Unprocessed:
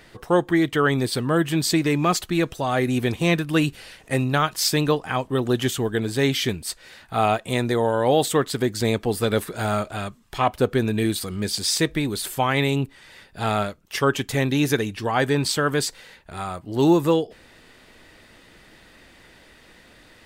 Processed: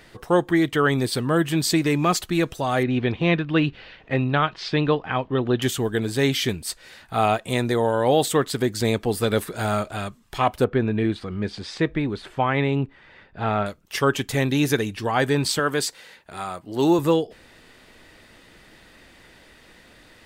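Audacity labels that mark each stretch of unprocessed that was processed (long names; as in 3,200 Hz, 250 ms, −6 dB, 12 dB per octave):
2.830000	5.620000	low-pass filter 3,700 Hz 24 dB per octave
10.640000	13.660000	low-pass filter 2,300 Hz
15.590000	16.990000	high-pass filter 220 Hz 6 dB per octave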